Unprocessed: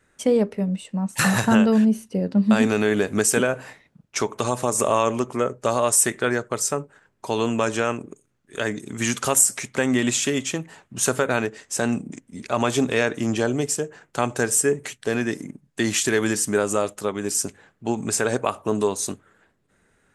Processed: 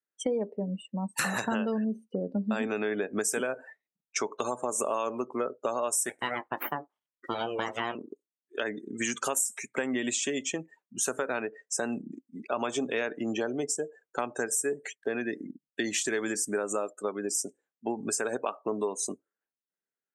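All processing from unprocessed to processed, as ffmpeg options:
-filter_complex "[0:a]asettb=1/sr,asplit=3[a][b][c];[a]atrim=end=6.094[d];[b]atrim=start=6.09:end=7.95,asetpts=PTS-STARTPTS,afade=t=in:d=0.004:c=qsin,afade=t=out:st=1.856:d=0.004:c=qsin,highshelf=f=6.5k:g=-2.5,aeval=exprs='abs(val(0))':c=same,asplit=2[e][f];[f]adelay=20,volume=-13dB[g];[e][g]amix=inputs=2:normalize=0,atrim=end_sample=82026[h];[c]atrim=start=7.946[i];[d][h]acrossfade=d=0.004:c1=hsin:c2=qsin[j];[j][i]acrossfade=d=0.004:c1=qsin:c2=hsin,highpass=260,afftdn=nr=34:nf=-33,acompressor=threshold=-29dB:ratio=3"

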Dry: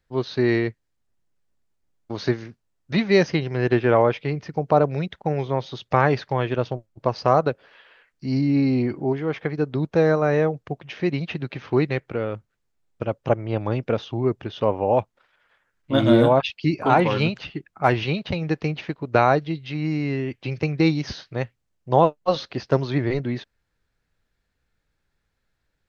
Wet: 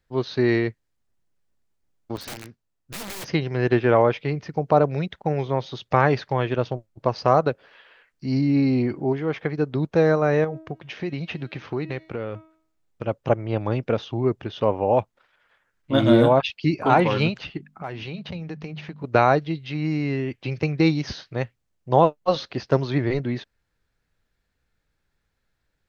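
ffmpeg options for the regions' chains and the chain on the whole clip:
-filter_complex "[0:a]asettb=1/sr,asplit=3[a][b][c];[a]atrim=end=2.164[d];[b]atrim=start=2.16:end=3.28,asetpts=PTS-STARTPTS,afade=t=in:d=0.004:c=qsin,afade=t=out:st=1.116:d=0.004:c=qsin,aeval=exprs='(tanh(7.94*val(0)+0.7)-tanh(0.7))/7.94':c=same,aeval=exprs='(mod(31.6*val(0)+1,2)-1)/31.6':c=same[e];[c]atrim=start=3.276[f];[d][e]acrossfade=d=0.004:c1=hsin:c2=qsin[g];[g][f]acrossfade=d=0.004:c1=qsin:c2=hsin,asettb=1/sr,asplit=3[h][i][j];[h]atrim=end=10.444[k];[i]atrim=start=10.44:end=13.04,asetpts=PTS-STARTPTS,afade=t=in:d=0.004:c=qsin,afade=t=out:st=2.596:d=0.004:c=qsin,bandreject=f=318.6:t=h:w=4,bandreject=f=637.2:t=h:w=4,bandreject=f=955.8:t=h:w=4,bandreject=f=1.2744k:t=h:w=4,bandreject=f=1.593k:t=h:w=4,bandreject=f=1.9116k:t=h:w=4,bandreject=f=2.2302k:t=h:w=4,bandreject=f=2.5488k:t=h:w=4,bandreject=f=2.8674k:t=h:w=4,bandreject=f=3.186k:t=h:w=4,bandreject=f=3.5046k:t=h:w=4,bandreject=f=3.8232k:t=h:w=4,bandreject=f=4.1418k:t=h:w=4,bandreject=f=4.4604k:t=h:w=4,bandreject=f=4.779k:t=h:w=4,bandreject=f=5.0976k:t=h:w=4,bandreject=f=5.4162k:t=h:w=4,bandreject=f=5.7348k:t=h:w=4,bandreject=f=6.0534k:t=h:w=4,bandreject=f=6.372k:t=h:w=4,bandreject=f=6.6906k:t=h:w=4,bandreject=f=7.0092k:t=h:w=4,bandreject=f=7.3278k:t=h:w=4,bandreject=f=7.6464k:t=h:w=4,bandreject=f=7.965k:t=h:w=4,bandreject=f=8.2836k:t=h:w=4,bandreject=f=8.6022k:t=h:w=4,bandreject=f=8.9208k:t=h:w=4,bandreject=f=9.2394k:t=h:w=4,bandreject=f=9.558k:t=h:w=4,bandreject=f=9.8766k:t=h:w=4,bandreject=f=10.1952k:t=h:w=4,acompressor=threshold=-26dB:ratio=2.5:attack=3.2:release=140:knee=1:detection=peak[l];[j]atrim=start=13.036[m];[k][l]acrossfade=d=0.004:c1=hsin:c2=qsin[n];[n][m]acrossfade=d=0.004:c1=qsin:c2=hsin,asettb=1/sr,asplit=3[o][p][q];[o]atrim=end=17.574[r];[p]atrim=start=17.57:end=19.04,asetpts=PTS-STARTPTS,afade=t=in:d=0.004:c=qsin,afade=t=out:st=1.466:d=0.004:c=qsin,equalizer=f=180:w=4.3:g=7,bandreject=f=50:t=h:w=6,bandreject=f=100:t=h:w=6,bandreject=f=150:t=h:w=6,bandreject=f=200:t=h:w=6,bandreject=f=250:t=h:w=6,acompressor=threshold=-33dB:ratio=3:attack=3.2:release=140:knee=1:detection=peak[s];[q]atrim=start=19.036[t];[r][s]acrossfade=d=0.004:c1=hsin:c2=qsin[u];[u][t]acrossfade=d=0.004:c1=qsin:c2=hsin"

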